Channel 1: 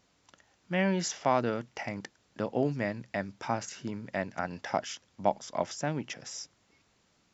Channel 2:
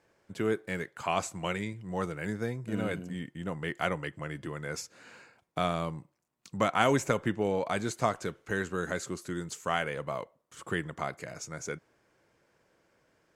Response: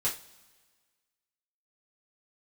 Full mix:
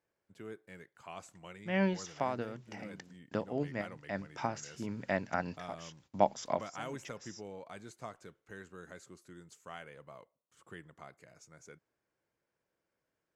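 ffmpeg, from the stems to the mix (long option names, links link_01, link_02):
-filter_complex "[0:a]agate=range=-20dB:threshold=-59dB:ratio=16:detection=peak,adelay=950,volume=0dB[link_01];[1:a]volume=-17dB,asplit=2[link_02][link_03];[link_03]apad=whole_len=365576[link_04];[link_01][link_04]sidechaincompress=threshold=-55dB:ratio=8:attack=10:release=199[link_05];[link_05][link_02]amix=inputs=2:normalize=0"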